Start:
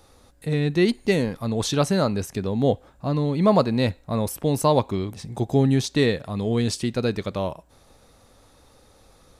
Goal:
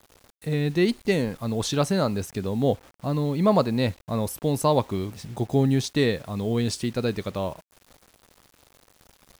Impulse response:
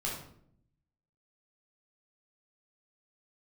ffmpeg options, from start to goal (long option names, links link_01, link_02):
-af "acrusher=bits=7:mix=0:aa=0.000001,volume=-2dB"